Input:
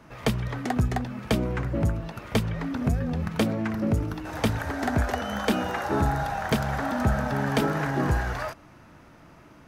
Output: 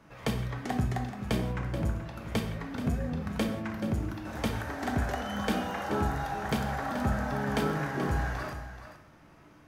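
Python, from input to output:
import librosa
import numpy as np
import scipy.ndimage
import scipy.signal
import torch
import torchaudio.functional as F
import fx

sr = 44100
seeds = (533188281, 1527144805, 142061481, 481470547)

y = x + 10.0 ** (-11.5 / 20.0) * np.pad(x, (int(430 * sr / 1000.0), 0))[:len(x)]
y = fx.rev_gated(y, sr, seeds[0], gate_ms=210, shape='falling', drr_db=4.0)
y = y * librosa.db_to_amplitude(-6.5)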